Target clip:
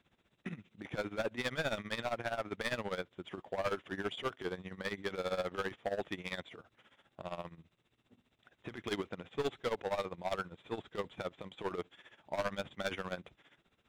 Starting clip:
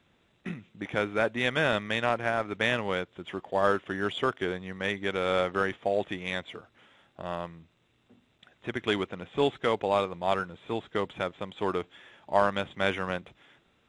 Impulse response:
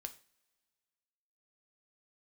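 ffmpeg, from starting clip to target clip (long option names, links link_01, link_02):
-af "asoftclip=type=hard:threshold=-24.5dB,tremolo=f=15:d=0.81,volume=-3dB"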